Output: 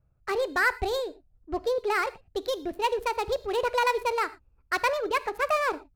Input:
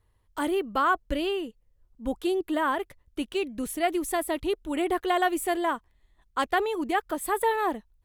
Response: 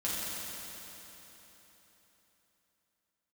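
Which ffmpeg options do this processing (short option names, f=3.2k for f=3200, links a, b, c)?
-filter_complex "[0:a]adynamicsmooth=sensitivity=8:basefreq=810,asplit=2[a][b];[1:a]atrim=start_sample=2205,atrim=end_sample=6615,adelay=14[c];[b][c]afir=irnorm=-1:irlink=0,volume=-18.5dB[d];[a][d]amix=inputs=2:normalize=0,asetrate=59535,aresample=44100"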